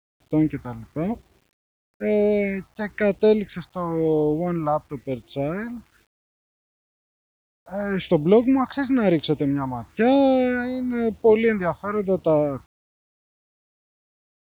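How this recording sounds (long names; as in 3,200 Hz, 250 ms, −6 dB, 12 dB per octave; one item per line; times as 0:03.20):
phaser sweep stages 4, 1 Hz, lowest notch 390–1,800 Hz
a quantiser's noise floor 10 bits, dither none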